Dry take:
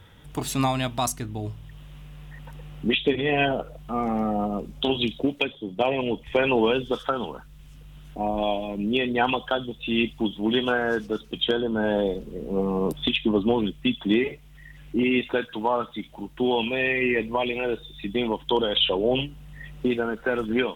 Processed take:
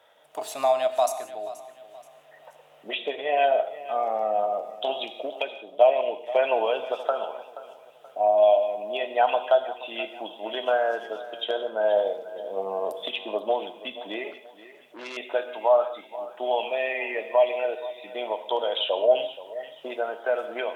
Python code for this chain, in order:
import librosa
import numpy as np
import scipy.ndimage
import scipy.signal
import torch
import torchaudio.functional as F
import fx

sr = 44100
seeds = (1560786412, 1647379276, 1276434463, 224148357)

p1 = fx.highpass_res(x, sr, hz=630.0, q=7.1)
p2 = p1 + fx.echo_feedback(p1, sr, ms=478, feedback_pct=36, wet_db=-16.0, dry=0)
p3 = fx.rev_gated(p2, sr, seeds[0], gate_ms=200, shape='flat', drr_db=10.0)
p4 = fx.transformer_sat(p3, sr, knee_hz=3500.0, at=(14.31, 15.17))
y = p4 * 10.0 ** (-7.0 / 20.0)